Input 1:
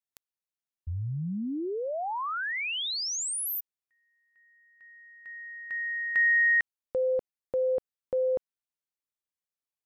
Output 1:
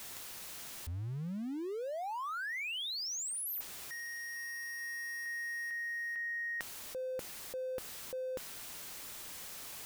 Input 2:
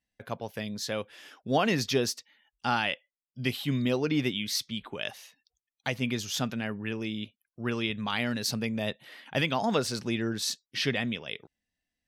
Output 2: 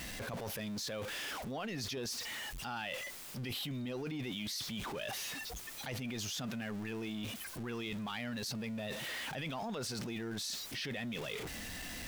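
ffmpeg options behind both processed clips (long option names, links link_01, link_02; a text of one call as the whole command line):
ffmpeg -i in.wav -af "aeval=exprs='val(0)+0.5*0.0106*sgn(val(0))':channel_layout=same,areverse,acompressor=threshold=-41dB:ratio=12:attack=1.9:release=20:knee=6:detection=peak,areverse,volume=3dB" out.wav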